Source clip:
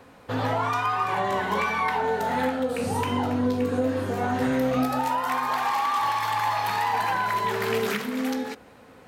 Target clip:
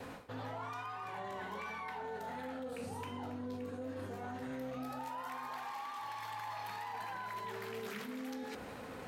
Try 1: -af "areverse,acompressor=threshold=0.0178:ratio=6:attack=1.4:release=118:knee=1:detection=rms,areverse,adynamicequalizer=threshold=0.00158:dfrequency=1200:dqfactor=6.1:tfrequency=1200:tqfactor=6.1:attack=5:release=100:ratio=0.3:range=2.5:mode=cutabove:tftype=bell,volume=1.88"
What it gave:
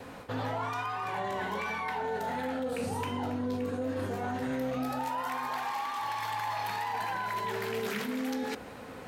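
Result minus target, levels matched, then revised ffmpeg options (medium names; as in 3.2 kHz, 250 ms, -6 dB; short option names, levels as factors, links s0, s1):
compression: peak gain reduction -9.5 dB
-af "areverse,acompressor=threshold=0.00473:ratio=6:attack=1.4:release=118:knee=1:detection=rms,areverse,adynamicequalizer=threshold=0.00158:dfrequency=1200:dqfactor=6.1:tfrequency=1200:tqfactor=6.1:attack=5:release=100:ratio=0.3:range=2.5:mode=cutabove:tftype=bell,volume=1.88"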